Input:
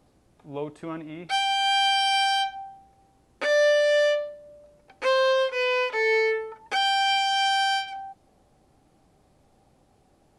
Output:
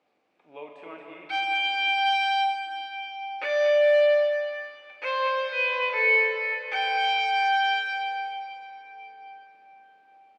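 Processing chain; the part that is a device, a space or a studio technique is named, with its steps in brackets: station announcement (band-pass 440–3800 Hz; peaking EQ 2.4 kHz +9 dB 0.57 oct; loudspeakers at several distances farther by 14 m -10 dB, 78 m -9 dB; reverberation RT60 4.6 s, pre-delay 9 ms, DRR 1.5 dB); trim -7 dB

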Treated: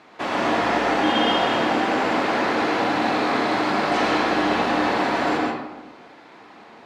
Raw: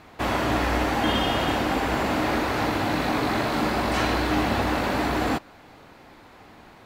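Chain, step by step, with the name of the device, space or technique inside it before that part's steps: supermarket ceiling speaker (band-pass 240–6500 Hz; reverberation RT60 1.0 s, pre-delay 100 ms, DRR -1.5 dB)

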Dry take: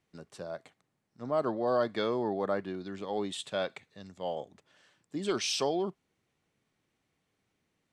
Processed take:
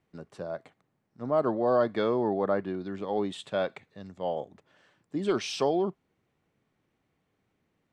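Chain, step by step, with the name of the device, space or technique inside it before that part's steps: through cloth (treble shelf 3 kHz -12.5 dB); trim +4.5 dB

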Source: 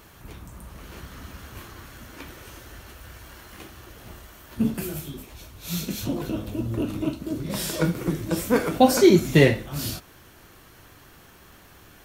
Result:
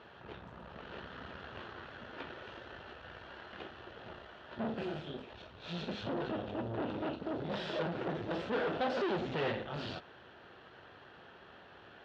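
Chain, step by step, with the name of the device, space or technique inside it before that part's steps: guitar amplifier (valve stage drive 33 dB, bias 0.75; tone controls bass -11 dB, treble -9 dB; cabinet simulation 83–3700 Hz, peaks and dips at 300 Hz -6 dB, 1.1 kHz -6 dB, 2.2 kHz -10 dB); trim +5.5 dB

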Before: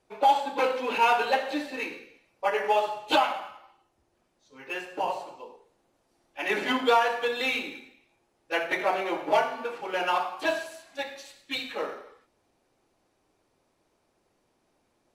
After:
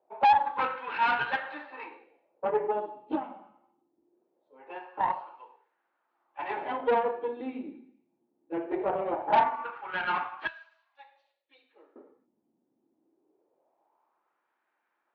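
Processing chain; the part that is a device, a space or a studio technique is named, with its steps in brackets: 10.47–11.96 s: differentiator; wah-wah guitar rig (wah-wah 0.22 Hz 220–1600 Hz, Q 3; valve stage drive 28 dB, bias 0.7; cabinet simulation 91–3800 Hz, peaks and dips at 98 Hz -7 dB, 330 Hz +5 dB, 890 Hz +6 dB); trim +7 dB

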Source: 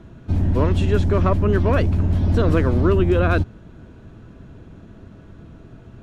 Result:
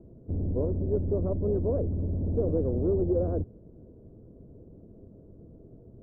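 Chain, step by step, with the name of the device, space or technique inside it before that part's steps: overdriven synthesiser ladder filter (saturation -13.5 dBFS, distortion -15 dB; four-pole ladder low-pass 580 Hz, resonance 50%)

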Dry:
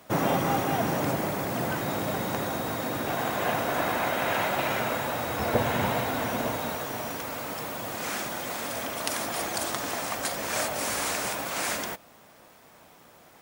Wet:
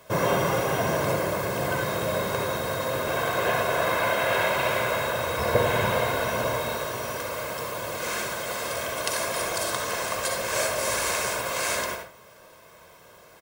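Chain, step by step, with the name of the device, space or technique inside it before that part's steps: microphone above a desk (comb 1.9 ms, depth 63%; reverberation RT60 0.40 s, pre-delay 56 ms, DRR 2 dB)

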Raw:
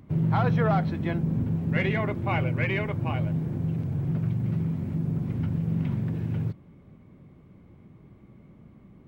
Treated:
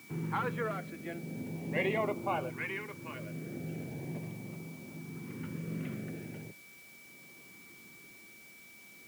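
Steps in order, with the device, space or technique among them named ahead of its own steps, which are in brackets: shortwave radio (band-pass 320–2900 Hz; tremolo 0.52 Hz, depth 58%; LFO notch saw up 0.4 Hz 550–2100 Hz; whistle 2.3 kHz -54 dBFS; white noise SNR 20 dB)

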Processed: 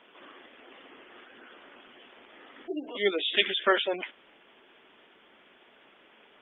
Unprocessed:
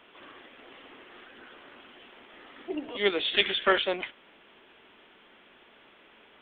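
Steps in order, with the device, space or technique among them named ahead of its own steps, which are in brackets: noise-suppressed video call (high-pass 160 Hz 12 dB/octave; spectral gate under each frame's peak -20 dB strong; Opus 32 kbps 48 kHz)

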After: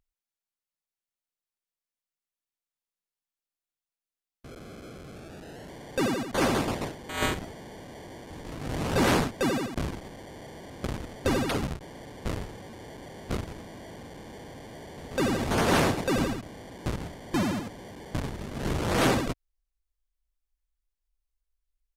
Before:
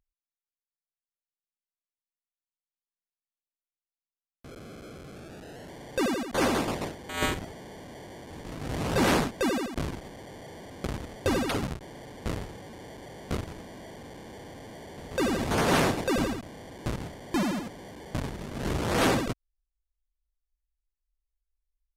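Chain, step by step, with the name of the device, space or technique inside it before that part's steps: octave pedal (harmony voices -12 st -9 dB)

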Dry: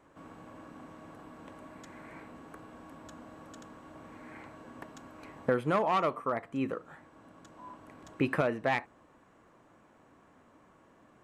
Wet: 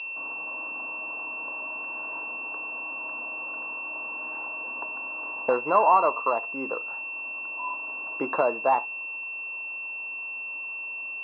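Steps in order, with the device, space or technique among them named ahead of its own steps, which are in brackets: toy sound module (decimation joined by straight lines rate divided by 8×; class-D stage that switches slowly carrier 2.7 kHz; cabinet simulation 540–4000 Hz, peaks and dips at 980 Hz +10 dB, 1.9 kHz -7 dB, 2.9 kHz -6 dB); trim +9 dB

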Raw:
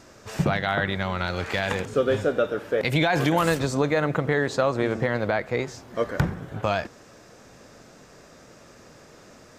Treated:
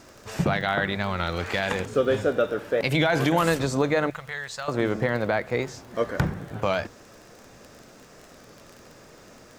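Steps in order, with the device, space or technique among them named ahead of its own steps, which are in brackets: hum notches 50/100/150 Hz; 4.10–4.69 s: amplifier tone stack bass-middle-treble 10-0-10; warped LP (warped record 33 1/3 rpm, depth 100 cents; crackle 27 per s -35 dBFS; pink noise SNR 35 dB)

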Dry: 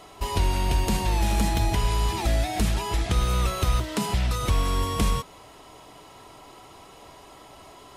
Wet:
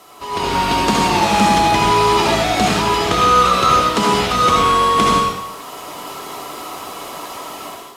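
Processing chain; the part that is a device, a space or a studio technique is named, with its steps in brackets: filmed off a television (band-pass 210–6500 Hz; peaking EQ 1.2 kHz +7 dB 0.39 oct; reverberation RT60 0.70 s, pre-delay 63 ms, DRR -1.5 dB; white noise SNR 24 dB; level rider gain up to 12.5 dB; AAC 64 kbps 32 kHz)

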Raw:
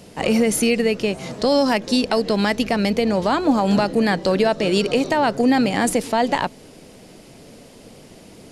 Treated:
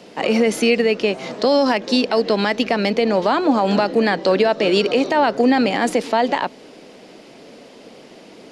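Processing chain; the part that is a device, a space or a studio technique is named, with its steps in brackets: DJ mixer with the lows and highs turned down (three-band isolator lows -20 dB, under 210 Hz, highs -16 dB, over 5.7 kHz; peak limiter -11 dBFS, peak gain reduction 5.5 dB); trim +4 dB

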